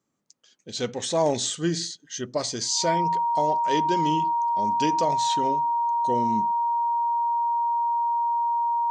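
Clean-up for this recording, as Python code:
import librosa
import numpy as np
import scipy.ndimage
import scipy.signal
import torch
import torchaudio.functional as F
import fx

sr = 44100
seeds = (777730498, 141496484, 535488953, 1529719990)

y = fx.notch(x, sr, hz=940.0, q=30.0)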